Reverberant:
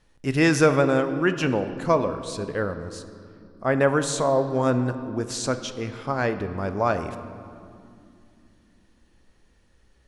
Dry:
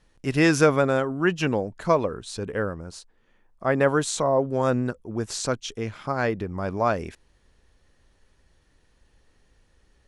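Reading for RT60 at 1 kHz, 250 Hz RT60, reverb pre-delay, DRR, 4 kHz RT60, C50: 2.3 s, 4.3 s, 3 ms, 9.0 dB, 1.6 s, 11.0 dB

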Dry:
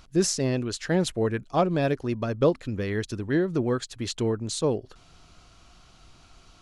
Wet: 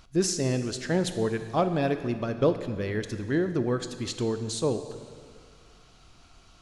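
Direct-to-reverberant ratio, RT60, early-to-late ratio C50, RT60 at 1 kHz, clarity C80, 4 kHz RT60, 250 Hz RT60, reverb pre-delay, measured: 8.5 dB, 2.0 s, 10.0 dB, 2.0 s, 11.0 dB, 1.9 s, 2.0 s, 7 ms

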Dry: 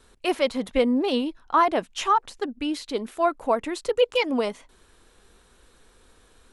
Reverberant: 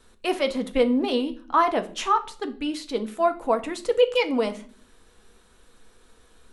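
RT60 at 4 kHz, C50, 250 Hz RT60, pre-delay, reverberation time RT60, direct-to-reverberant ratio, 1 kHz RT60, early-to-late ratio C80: 0.40 s, 16.0 dB, 0.75 s, 4 ms, 0.45 s, 7.5 dB, 0.40 s, 21.0 dB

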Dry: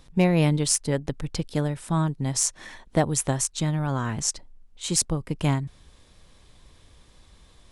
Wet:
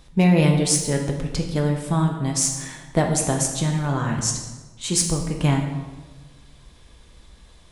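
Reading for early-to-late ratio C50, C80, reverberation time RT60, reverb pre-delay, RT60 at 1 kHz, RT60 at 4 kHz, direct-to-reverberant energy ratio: 5.5 dB, 7.5 dB, 1.3 s, 3 ms, 1.2 s, 0.90 s, 1.5 dB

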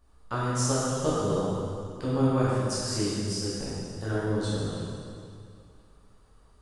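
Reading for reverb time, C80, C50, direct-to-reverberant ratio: 2.3 s, -2.0 dB, -4.0 dB, -9.5 dB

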